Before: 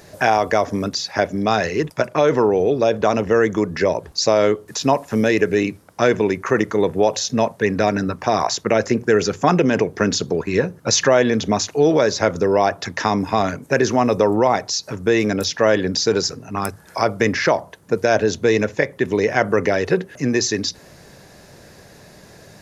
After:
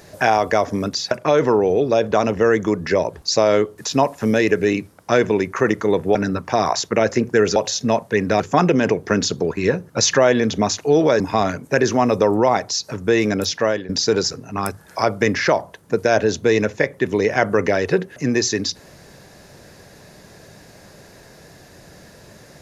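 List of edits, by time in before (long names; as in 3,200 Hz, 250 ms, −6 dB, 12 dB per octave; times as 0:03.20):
0:01.11–0:02.01: remove
0:07.05–0:07.89: move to 0:09.30
0:12.10–0:13.19: remove
0:15.54–0:15.88: fade out linear, to −17 dB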